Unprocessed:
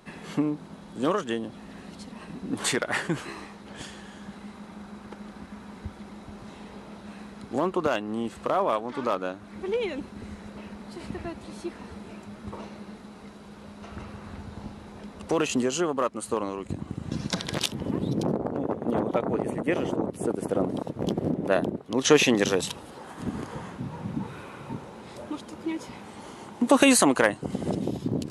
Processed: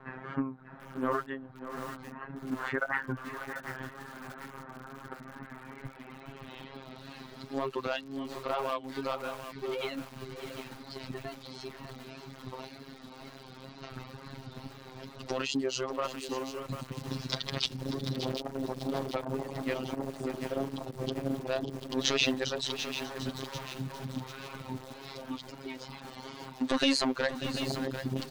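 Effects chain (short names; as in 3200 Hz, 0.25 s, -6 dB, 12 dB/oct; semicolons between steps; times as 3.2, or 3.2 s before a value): reverb removal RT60 1.2 s; in parallel at +2 dB: compressor 4:1, threshold -42 dBFS, peak gain reduction 24 dB; on the sum: soft clip -15.5 dBFS, distortion -13 dB; robotiser 133 Hz; wow and flutter 46 cents; low-pass sweep 1500 Hz -> 4500 Hz, 5.15–7.17; on a send: echo 0.591 s -12 dB; on the sum: lo-fi delay 0.742 s, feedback 55%, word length 6-bit, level -9 dB; gain -4.5 dB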